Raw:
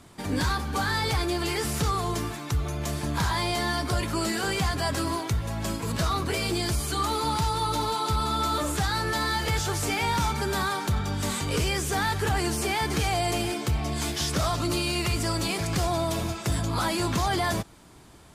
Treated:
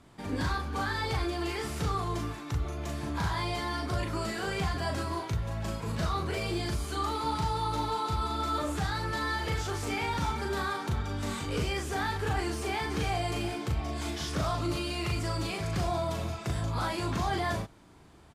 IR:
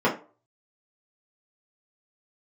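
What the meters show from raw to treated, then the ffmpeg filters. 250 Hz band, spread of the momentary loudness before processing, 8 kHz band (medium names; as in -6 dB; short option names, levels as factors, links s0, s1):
-5.0 dB, 3 LU, -11.0 dB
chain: -filter_complex "[0:a]aemphasis=mode=reproduction:type=cd,asplit=2[s0][s1];[s1]adelay=38,volume=0.668[s2];[s0][s2]amix=inputs=2:normalize=0,volume=0.501"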